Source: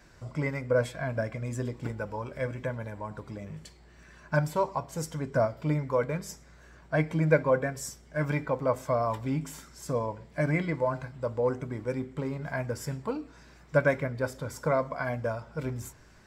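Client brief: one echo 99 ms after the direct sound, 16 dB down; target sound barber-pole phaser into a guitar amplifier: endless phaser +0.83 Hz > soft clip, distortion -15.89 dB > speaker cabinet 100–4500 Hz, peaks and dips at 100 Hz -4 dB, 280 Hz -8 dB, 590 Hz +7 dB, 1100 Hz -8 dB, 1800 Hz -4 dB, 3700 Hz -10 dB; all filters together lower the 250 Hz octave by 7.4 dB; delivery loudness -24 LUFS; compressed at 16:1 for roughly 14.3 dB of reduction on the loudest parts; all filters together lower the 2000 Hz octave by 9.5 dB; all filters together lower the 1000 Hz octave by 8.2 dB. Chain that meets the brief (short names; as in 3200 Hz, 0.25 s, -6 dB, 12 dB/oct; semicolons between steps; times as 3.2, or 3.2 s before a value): bell 250 Hz -7.5 dB; bell 1000 Hz -8 dB; bell 2000 Hz -5.5 dB; compressor 16:1, threshold -35 dBFS; echo 99 ms -16 dB; endless phaser +0.83 Hz; soft clip -36 dBFS; speaker cabinet 100–4500 Hz, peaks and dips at 100 Hz -4 dB, 280 Hz -8 dB, 590 Hz +7 dB, 1100 Hz -8 dB, 1800 Hz -4 dB, 3700 Hz -10 dB; gain +22 dB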